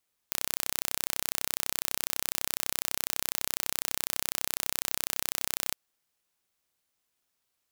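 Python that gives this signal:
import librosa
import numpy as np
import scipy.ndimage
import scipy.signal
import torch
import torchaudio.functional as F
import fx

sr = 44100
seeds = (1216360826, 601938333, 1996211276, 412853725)

y = 10.0 ** (-2.0 / 20.0) * (np.mod(np.arange(round(5.41 * sr)), round(sr / 32.0)) == 0)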